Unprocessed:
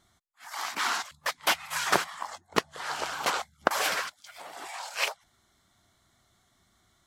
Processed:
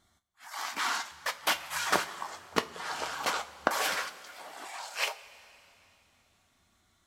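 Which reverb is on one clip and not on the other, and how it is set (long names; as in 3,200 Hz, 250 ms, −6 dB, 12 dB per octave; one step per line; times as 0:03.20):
coupled-rooms reverb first 0.22 s, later 3 s, from −18 dB, DRR 7.5 dB
level −3 dB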